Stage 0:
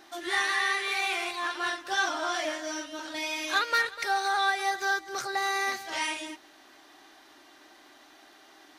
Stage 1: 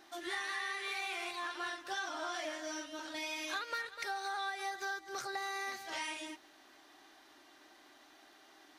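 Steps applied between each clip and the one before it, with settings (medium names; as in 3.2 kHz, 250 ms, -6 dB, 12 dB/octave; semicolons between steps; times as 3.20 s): compression 5:1, threshold -30 dBFS, peak gain reduction 8.5 dB; trim -6 dB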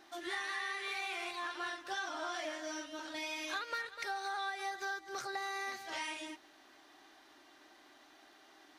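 treble shelf 7.2 kHz -4 dB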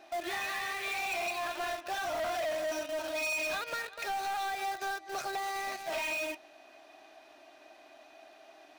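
small resonant body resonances 650/2500 Hz, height 17 dB, ringing for 35 ms; in parallel at -9 dB: companded quantiser 2-bit; on the sum: saturation -31 dBFS, distortion -12 dB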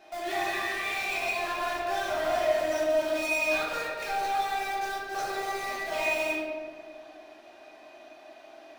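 reverberation RT60 2.0 s, pre-delay 5 ms, DRR -6 dB; trim -2 dB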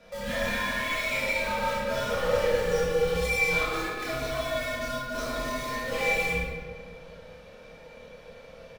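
octave divider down 2 oct, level +3 dB; frequency shift -140 Hz; reverse bouncing-ball echo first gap 30 ms, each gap 1.25×, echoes 5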